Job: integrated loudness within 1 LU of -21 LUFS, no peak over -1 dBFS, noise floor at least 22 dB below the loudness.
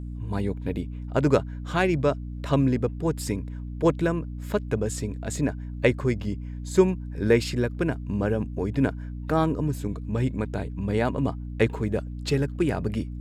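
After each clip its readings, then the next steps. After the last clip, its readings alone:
hum 60 Hz; highest harmonic 300 Hz; hum level -32 dBFS; loudness -26.5 LUFS; peak level -5.5 dBFS; loudness target -21.0 LUFS
-> hum notches 60/120/180/240/300 Hz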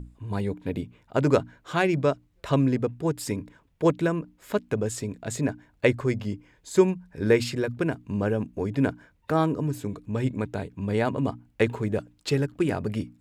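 hum not found; loudness -27.0 LUFS; peak level -5.5 dBFS; loudness target -21.0 LUFS
-> trim +6 dB; peak limiter -1 dBFS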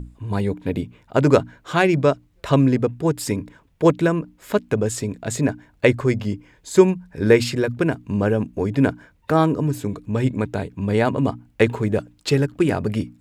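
loudness -21.0 LUFS; peak level -1.0 dBFS; noise floor -58 dBFS

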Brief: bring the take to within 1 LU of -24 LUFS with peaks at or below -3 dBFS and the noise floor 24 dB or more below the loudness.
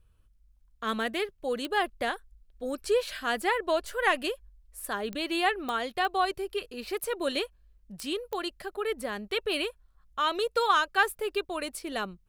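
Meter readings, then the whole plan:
clicks found 6; loudness -30.0 LUFS; peak level -10.5 dBFS; loudness target -24.0 LUFS
-> de-click; trim +6 dB

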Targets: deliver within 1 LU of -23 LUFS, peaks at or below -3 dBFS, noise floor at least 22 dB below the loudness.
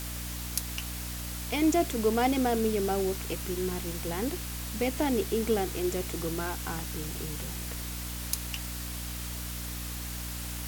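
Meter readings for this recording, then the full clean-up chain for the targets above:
hum 60 Hz; highest harmonic 300 Hz; hum level -36 dBFS; noise floor -37 dBFS; noise floor target -54 dBFS; loudness -31.5 LUFS; peak level -8.5 dBFS; loudness target -23.0 LUFS
-> de-hum 60 Hz, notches 5; noise reduction 17 dB, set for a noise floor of -37 dBFS; trim +8.5 dB; peak limiter -3 dBFS

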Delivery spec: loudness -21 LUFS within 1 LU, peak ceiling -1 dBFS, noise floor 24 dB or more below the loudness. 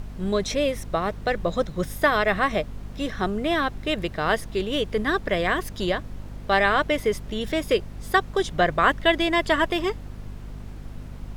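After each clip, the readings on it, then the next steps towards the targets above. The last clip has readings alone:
hum 50 Hz; highest harmonic 250 Hz; hum level -36 dBFS; noise floor -39 dBFS; noise floor target -48 dBFS; loudness -24.0 LUFS; peak level -6.0 dBFS; loudness target -21.0 LUFS
-> de-hum 50 Hz, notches 5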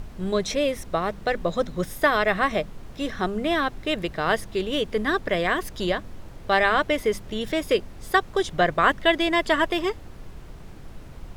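hum not found; noise floor -42 dBFS; noise floor target -48 dBFS
-> noise print and reduce 6 dB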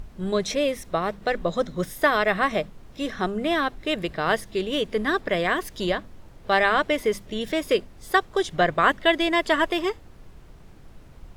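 noise floor -47 dBFS; noise floor target -48 dBFS
-> noise print and reduce 6 dB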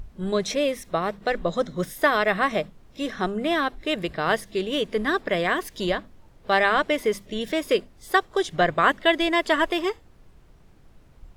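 noise floor -53 dBFS; loudness -24.0 LUFS; peak level -6.5 dBFS; loudness target -21.0 LUFS
-> trim +3 dB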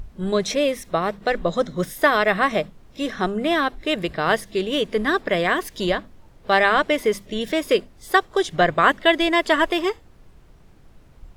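loudness -21.0 LUFS; peak level -3.5 dBFS; noise floor -50 dBFS

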